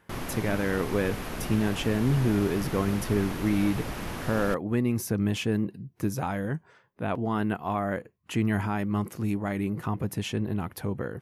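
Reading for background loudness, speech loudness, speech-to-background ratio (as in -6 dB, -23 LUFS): -36.0 LUFS, -29.0 LUFS, 7.0 dB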